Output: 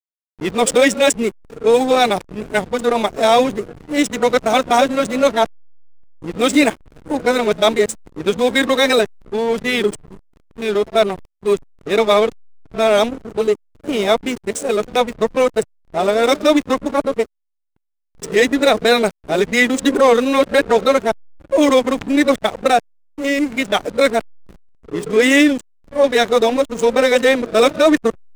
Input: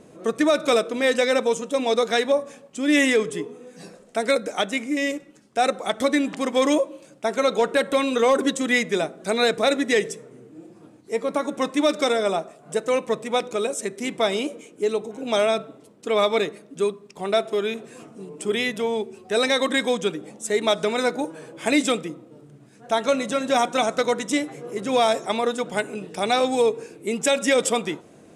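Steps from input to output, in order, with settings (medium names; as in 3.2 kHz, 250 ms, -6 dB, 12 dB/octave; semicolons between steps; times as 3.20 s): reverse the whole clip; hysteresis with a dead band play -27.5 dBFS; trim +7 dB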